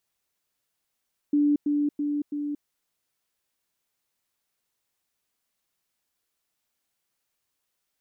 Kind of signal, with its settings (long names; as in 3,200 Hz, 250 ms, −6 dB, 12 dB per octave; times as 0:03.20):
level staircase 292 Hz −18 dBFS, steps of −3 dB, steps 4, 0.23 s 0.10 s